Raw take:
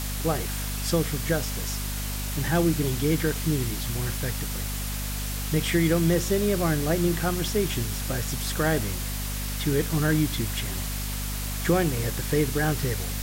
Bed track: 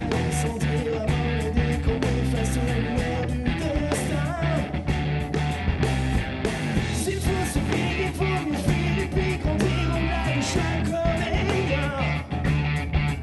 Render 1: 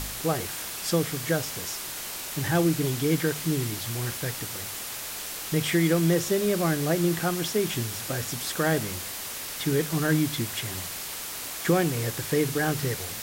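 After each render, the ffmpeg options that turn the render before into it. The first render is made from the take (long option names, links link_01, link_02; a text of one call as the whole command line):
ffmpeg -i in.wav -af "bandreject=frequency=50:width_type=h:width=4,bandreject=frequency=100:width_type=h:width=4,bandreject=frequency=150:width_type=h:width=4,bandreject=frequency=200:width_type=h:width=4,bandreject=frequency=250:width_type=h:width=4" out.wav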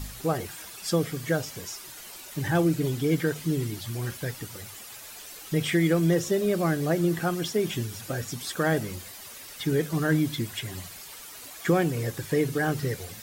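ffmpeg -i in.wav -af "afftdn=noise_reduction=11:noise_floor=-36" out.wav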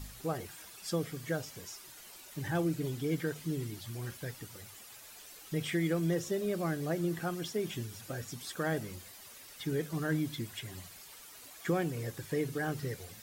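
ffmpeg -i in.wav -af "volume=-8.5dB" out.wav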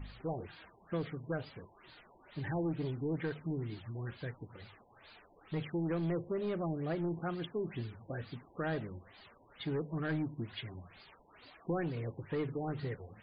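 ffmpeg -i in.wav -af "asoftclip=type=tanh:threshold=-29dB,afftfilt=real='re*lt(b*sr/1024,1000*pow(5000/1000,0.5+0.5*sin(2*PI*2.2*pts/sr)))':imag='im*lt(b*sr/1024,1000*pow(5000/1000,0.5+0.5*sin(2*PI*2.2*pts/sr)))':win_size=1024:overlap=0.75" out.wav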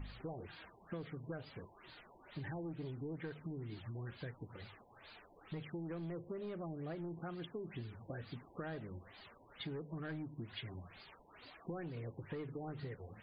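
ffmpeg -i in.wav -af "acompressor=threshold=-42dB:ratio=6" out.wav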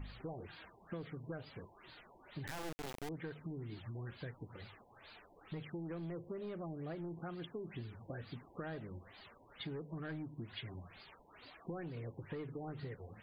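ffmpeg -i in.wav -filter_complex "[0:a]asettb=1/sr,asplit=3[link_01][link_02][link_03];[link_01]atrim=end=2.474[link_04];[link_02]atrim=start=2.47:end=3.09,asetpts=PTS-STARTPTS,afade=type=in:duration=0.004:curve=qsin,afade=type=out:start_time=0.616:duration=0.004:curve=qsin,acrusher=bits=4:dc=4:mix=0:aa=0.000001[link_05];[link_03]atrim=start=3.086[link_06];[link_04][link_05]acrossfade=duration=0.004:curve1=hsin:curve2=qsin[link_07];[link_07][link_06]acrossfade=duration=0.004:curve1=qsin:curve2=hsin" out.wav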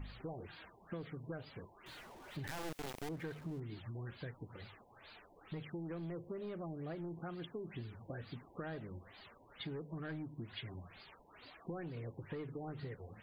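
ffmpeg -i in.wav -filter_complex "[0:a]asettb=1/sr,asplit=3[link_01][link_02][link_03];[link_01]atrim=end=1.864[link_04];[link_02]atrim=start=1.86:end=3.6,asetpts=PTS-STARTPTS,afade=type=in:duration=0.004:curve=qsin,afade=type=out:start_time=1.736:duration=0.004:curve=qsin,aeval=exprs='val(0)+0.5*0.00211*sgn(val(0))':channel_layout=same[link_05];[link_03]atrim=start=3.596[link_06];[link_04][link_05]acrossfade=duration=0.004:curve1=hsin:curve2=qsin[link_07];[link_07][link_06]acrossfade=duration=0.004:curve1=qsin:curve2=hsin" out.wav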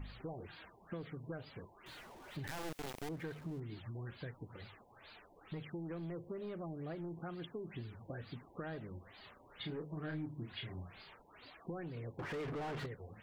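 ffmpeg -i in.wav -filter_complex "[0:a]asettb=1/sr,asplit=3[link_01][link_02][link_03];[link_01]atrim=end=9.204[link_04];[link_02]atrim=start=9.2:end=11.22,asetpts=PTS-STARTPTS,afade=type=in:duration=0.004:curve=qsin,afade=type=out:start_time=2.016:duration=0.004:curve=qsin,asplit=2[link_05][link_06];[link_06]adelay=33,volume=-5dB[link_07];[link_05][link_07]amix=inputs=2:normalize=0,atrim=end_sample=89082[link_08];[link_03]atrim=start=11.216[link_09];[link_04][link_08]acrossfade=duration=0.004:curve1=hsin:curve2=qsin[link_10];[link_10][link_09]acrossfade=duration=0.004:curve1=qsin:curve2=hsin,asettb=1/sr,asplit=3[link_11][link_12][link_13];[link_11]atrim=end=12.194[link_14];[link_12]atrim=start=12.19:end=12.86,asetpts=PTS-STARTPTS,afade=type=in:duration=0.004:curve=qsin,afade=type=out:start_time=0.666:duration=0.004:curve=qsin,asplit=2[link_15][link_16];[link_16]highpass=frequency=720:poles=1,volume=35dB,asoftclip=type=tanh:threshold=-35dB[link_17];[link_15][link_17]amix=inputs=2:normalize=0,lowpass=frequency=1900:poles=1,volume=-6dB[link_18];[link_13]atrim=start=12.856[link_19];[link_14][link_18]acrossfade=duration=0.004:curve1=hsin:curve2=qsin[link_20];[link_20][link_19]acrossfade=duration=0.004:curve1=qsin:curve2=hsin" out.wav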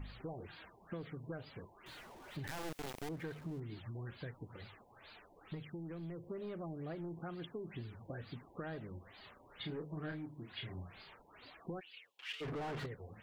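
ffmpeg -i in.wav -filter_complex "[0:a]asettb=1/sr,asplit=3[link_01][link_02][link_03];[link_01]atrim=end=5.554[link_04];[link_02]atrim=start=5.55:end=6.23,asetpts=PTS-STARTPTS,afade=type=in:duration=0.004:curve=qsin,afade=type=out:start_time=0.676:duration=0.004:curve=qsin,equalizer=frequency=850:width_type=o:width=2.9:gain=-5[link_05];[link_03]atrim=start=6.226[link_06];[link_04][link_05]acrossfade=duration=0.004:curve1=hsin:curve2=qsin[link_07];[link_07][link_06]acrossfade=duration=0.004:curve1=qsin:curve2=hsin,asettb=1/sr,asplit=3[link_08][link_09][link_10];[link_08]atrim=end=10.124[link_11];[link_09]atrim=start=10.12:end=10.58,asetpts=PTS-STARTPTS,afade=type=in:duration=0.004:curve=qsin,afade=type=out:start_time=0.456:duration=0.004:curve=qsin,lowshelf=frequency=220:gain=-8[link_12];[link_10]atrim=start=10.576[link_13];[link_11][link_12]acrossfade=duration=0.004:curve1=hsin:curve2=qsin[link_14];[link_14][link_13]acrossfade=duration=0.004:curve1=qsin:curve2=hsin,asplit=3[link_15][link_16][link_17];[link_15]afade=type=out:start_time=11.79:duration=0.02[link_18];[link_16]highpass=frequency=2900:width_type=q:width=4.6,afade=type=in:start_time=11.79:duration=0.02,afade=type=out:start_time=12.4:duration=0.02[link_19];[link_17]afade=type=in:start_time=12.4:duration=0.02[link_20];[link_18][link_19][link_20]amix=inputs=3:normalize=0" out.wav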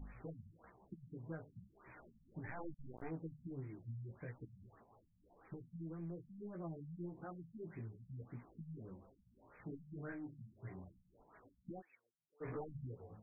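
ffmpeg -i in.wav -af "flanger=delay=15:depth=3.6:speed=1.1,afftfilt=real='re*lt(b*sr/1024,210*pow(2600/210,0.5+0.5*sin(2*PI*1.7*pts/sr)))':imag='im*lt(b*sr/1024,210*pow(2600/210,0.5+0.5*sin(2*PI*1.7*pts/sr)))':win_size=1024:overlap=0.75" out.wav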